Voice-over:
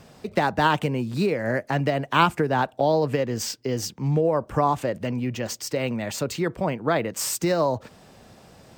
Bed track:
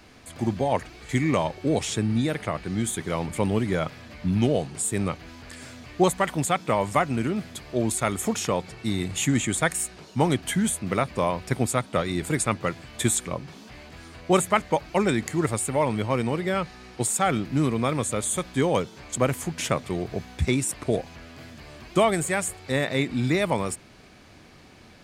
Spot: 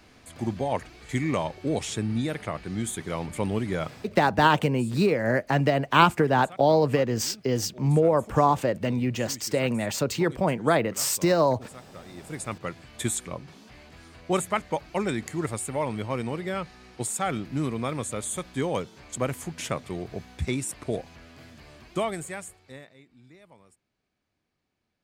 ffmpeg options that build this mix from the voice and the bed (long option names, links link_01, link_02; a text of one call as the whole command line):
ffmpeg -i stem1.wav -i stem2.wav -filter_complex "[0:a]adelay=3800,volume=1dB[link_01];[1:a]volume=12.5dB,afade=type=out:start_time=3.92:duration=0.24:silence=0.133352,afade=type=in:start_time=12.05:duration=0.78:silence=0.158489,afade=type=out:start_time=21.68:duration=1.26:silence=0.0562341[link_02];[link_01][link_02]amix=inputs=2:normalize=0" out.wav